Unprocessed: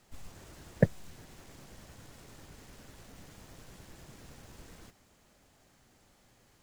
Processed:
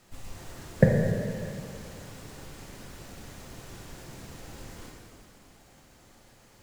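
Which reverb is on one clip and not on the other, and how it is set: plate-style reverb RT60 2.4 s, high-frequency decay 0.9×, DRR -1.5 dB; trim +4 dB

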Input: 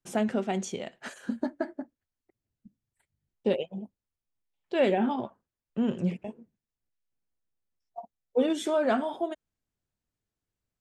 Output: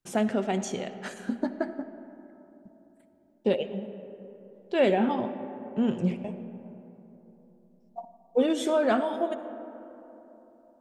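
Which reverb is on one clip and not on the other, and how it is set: algorithmic reverb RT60 3.6 s, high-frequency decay 0.35×, pre-delay 30 ms, DRR 11 dB; trim +1.5 dB

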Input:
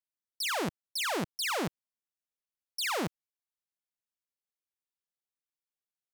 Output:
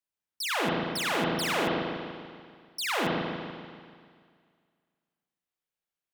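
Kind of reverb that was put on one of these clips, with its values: spring tank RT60 2 s, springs 36/48 ms, chirp 75 ms, DRR -3.5 dB

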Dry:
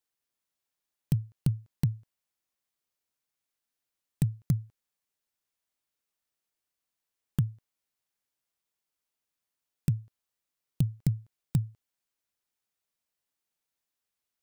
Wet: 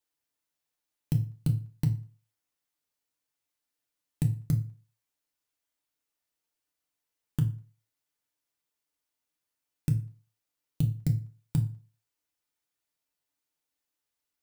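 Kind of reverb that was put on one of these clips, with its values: FDN reverb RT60 0.37 s, low-frequency decay 1×, high-frequency decay 0.85×, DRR 2.5 dB; trim -1.5 dB

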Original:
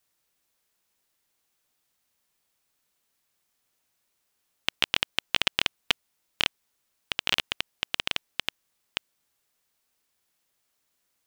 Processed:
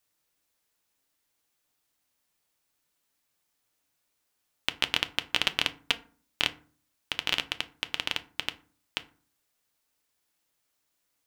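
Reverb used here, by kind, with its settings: FDN reverb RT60 0.42 s, low-frequency decay 1.45×, high-frequency decay 0.55×, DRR 9.5 dB; trim -2 dB

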